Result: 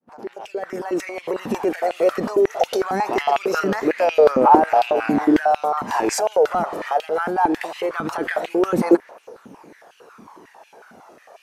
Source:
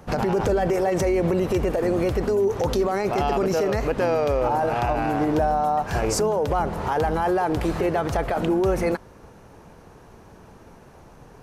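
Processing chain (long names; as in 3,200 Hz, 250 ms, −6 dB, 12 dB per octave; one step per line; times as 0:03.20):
fade in at the beginning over 1.85 s
0:06.68–0:08.21: downward compressor 2.5 to 1, threshold −24 dBFS, peak gain reduction 4.5 dB
phase shifter 0.22 Hz, delay 1.7 ms, feedback 46%
high-pass on a step sequencer 11 Hz 230–2,700 Hz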